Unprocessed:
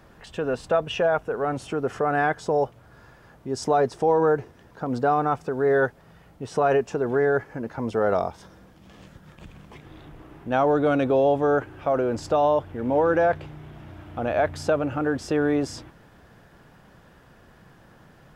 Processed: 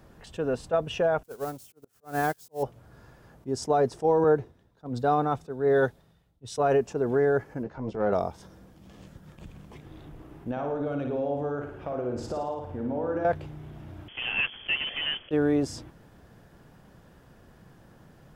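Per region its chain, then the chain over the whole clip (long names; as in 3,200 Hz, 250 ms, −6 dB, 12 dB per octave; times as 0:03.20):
0:01.23–0:02.63: spike at every zero crossing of −26.5 dBFS + volume swells 156 ms + expander for the loud parts 2.5 to 1, over −40 dBFS
0:04.24–0:06.58: parametric band 3,700 Hz +9.5 dB 0.23 octaves + multiband upward and downward expander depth 100%
0:07.63–0:08.13: transient designer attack −11 dB, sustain −3 dB + high-frequency loss of the air 110 metres + double-tracking delay 15 ms −7.5 dB
0:10.51–0:13.25: high-shelf EQ 4,300 Hz −8.5 dB + downward compressor 3 to 1, threshold −29 dBFS + flutter between parallel walls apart 9.6 metres, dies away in 0.7 s
0:14.08–0:15.31: one scale factor per block 3 bits + low-shelf EQ 180 Hz −6.5 dB + voice inversion scrambler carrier 3,300 Hz
whole clip: parametric band 1,800 Hz −6 dB 2.9 octaves; level that may rise only so fast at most 550 dB per second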